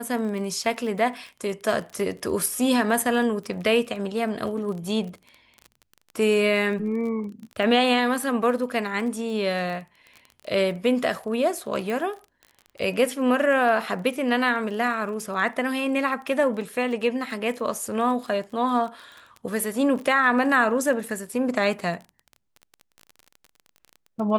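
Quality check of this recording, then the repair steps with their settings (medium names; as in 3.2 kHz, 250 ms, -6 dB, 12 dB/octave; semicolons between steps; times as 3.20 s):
crackle 23 per s -33 dBFS
11.90 s: pop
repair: de-click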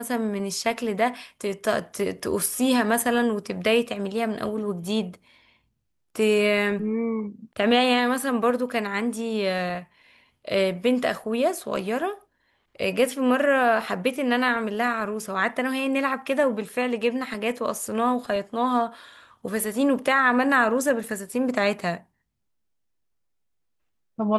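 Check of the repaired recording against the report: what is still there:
nothing left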